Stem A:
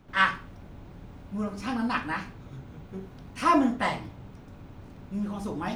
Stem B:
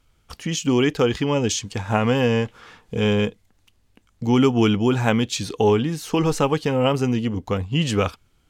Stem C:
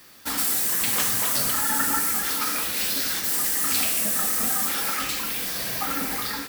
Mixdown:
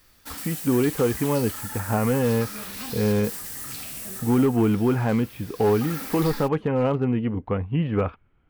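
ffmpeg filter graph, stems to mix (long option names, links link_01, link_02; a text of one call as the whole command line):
ffmpeg -i stem1.wav -i stem2.wav -i stem3.wav -filter_complex "[0:a]acompressor=threshold=-30dB:ratio=6,adelay=1150,volume=-5dB[link_01];[1:a]deesser=0.95,lowpass=frequency=2300:width=0.5412,lowpass=frequency=2300:width=1.3066,volume=12.5dB,asoftclip=hard,volume=-12.5dB,volume=-1.5dB,asplit=2[link_02][link_03];[2:a]alimiter=limit=-15dB:level=0:latency=1:release=235,volume=2dB,afade=type=out:start_time=4.13:duration=0.35:silence=0.354813,afade=type=in:start_time=5.54:duration=0.44:silence=0.266073[link_04];[link_03]apad=whole_len=304471[link_05];[link_01][link_05]sidechaincompress=threshold=-41dB:ratio=5:attack=16:release=109[link_06];[link_06][link_02][link_04]amix=inputs=3:normalize=0" out.wav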